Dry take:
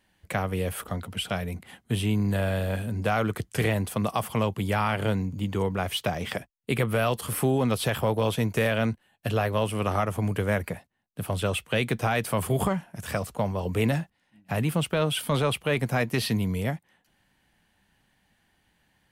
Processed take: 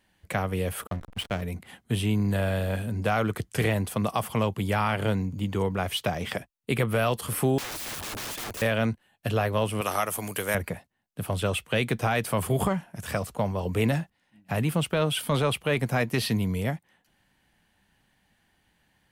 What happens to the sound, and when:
0:00.87–0:01.42: slack as between gear wheels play −27.5 dBFS
0:07.58–0:08.62: wrap-around overflow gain 30.5 dB
0:09.81–0:10.55: RIAA equalisation recording

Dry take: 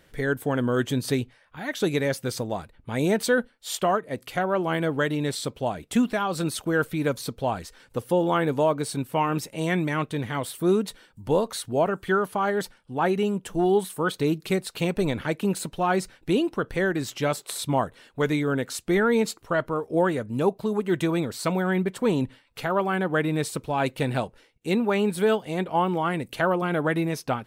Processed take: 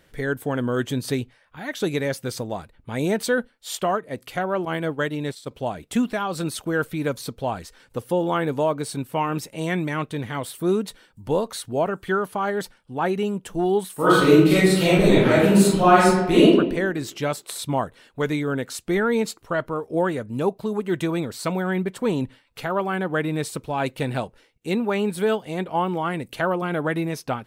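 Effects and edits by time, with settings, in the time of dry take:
0:04.65–0:05.51: downward expander −25 dBFS
0:13.95–0:16.52: thrown reverb, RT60 0.98 s, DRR −10.5 dB

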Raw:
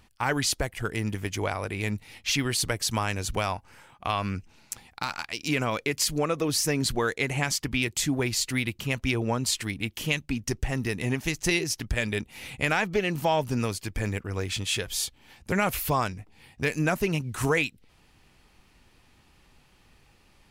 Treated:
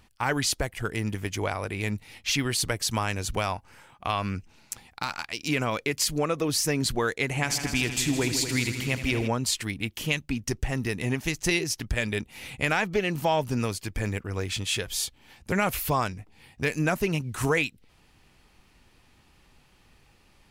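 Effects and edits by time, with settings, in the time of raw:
0:07.26–0:09.28: echo machine with several playback heads 80 ms, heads all three, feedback 54%, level −13 dB

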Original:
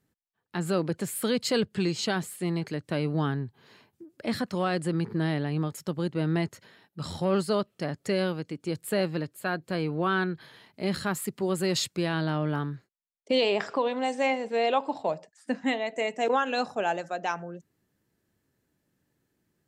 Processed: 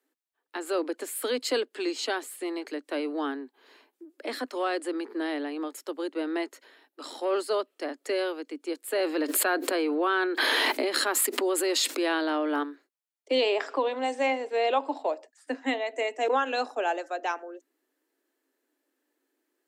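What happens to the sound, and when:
0:08.95–0:12.63: envelope flattener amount 100%
whole clip: Butterworth high-pass 260 Hz 96 dB per octave; parametric band 5,700 Hz −2.5 dB

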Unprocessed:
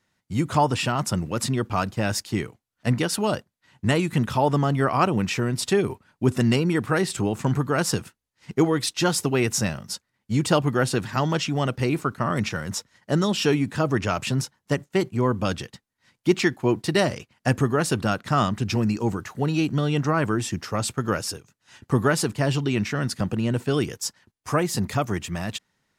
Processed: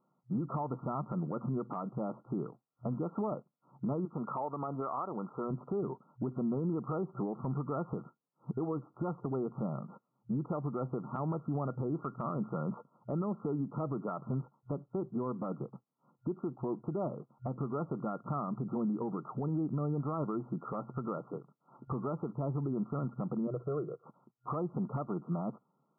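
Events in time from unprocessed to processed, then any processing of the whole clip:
0:04.05–0:05.51: high-pass filter 800 Hz 6 dB per octave
0:23.47–0:24.06: phaser with its sweep stopped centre 890 Hz, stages 6
whole clip: brick-wall band-pass 120–1,400 Hz; downward compressor 6 to 1, threshold −29 dBFS; brickwall limiter −26.5 dBFS

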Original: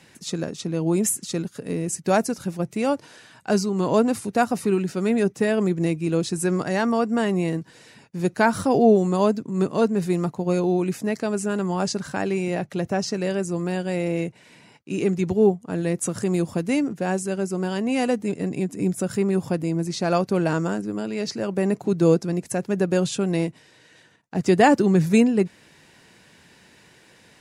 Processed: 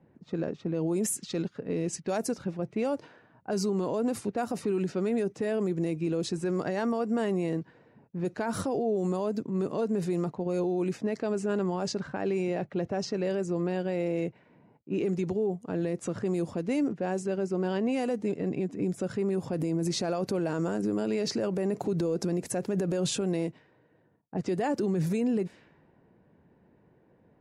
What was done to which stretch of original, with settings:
0:01.12–0:02.18: parametric band 4,600 Hz +6 dB 2 octaves
0:19.53–0:23.21: clip gain +6.5 dB
whole clip: low-pass that shuts in the quiet parts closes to 620 Hz, open at −17.5 dBFS; dynamic equaliser 460 Hz, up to +6 dB, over −33 dBFS, Q 0.87; brickwall limiter −16.5 dBFS; level −4.5 dB

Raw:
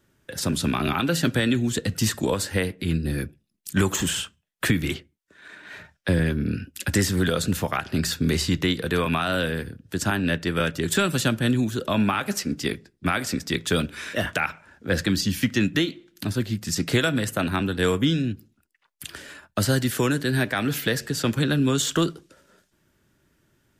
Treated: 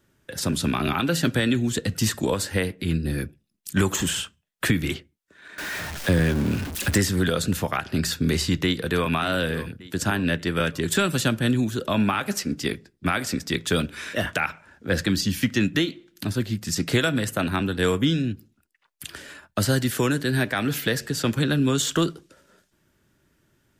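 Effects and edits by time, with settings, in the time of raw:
0:05.58–0:06.98: converter with a step at zero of −27.5 dBFS
0:08.64–0:09.13: delay throw 580 ms, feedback 45%, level −14.5 dB

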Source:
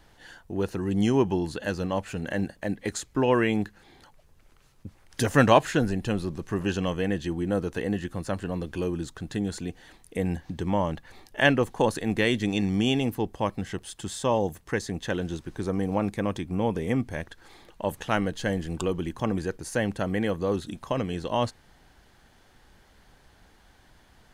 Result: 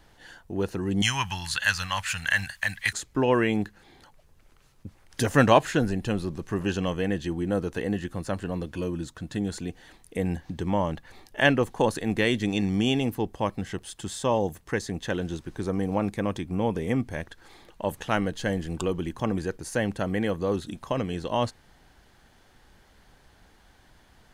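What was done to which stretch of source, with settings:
0:01.02–0:02.93: drawn EQ curve 110 Hz 0 dB, 380 Hz −26 dB, 1,000 Hz +5 dB, 1,700 Hz +13 dB
0:08.66–0:09.37: notch comb filter 400 Hz

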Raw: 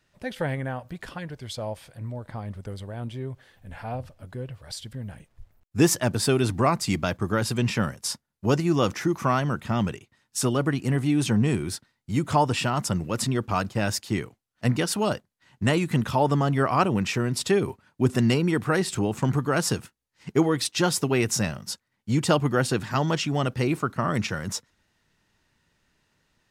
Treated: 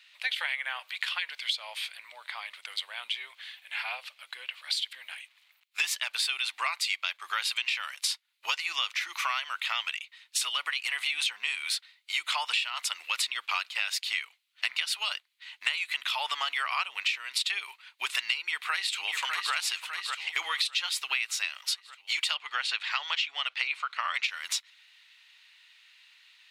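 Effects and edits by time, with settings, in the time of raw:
0:18.37–0:19.54: delay throw 600 ms, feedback 55%, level −11 dB
0:22.34–0:24.23: high-frequency loss of the air 76 metres
whole clip: high-pass filter 1,100 Hz 24 dB per octave; flat-topped bell 3,000 Hz +13 dB 1.3 octaves; downward compressor 10 to 1, threshold −32 dBFS; level +5.5 dB

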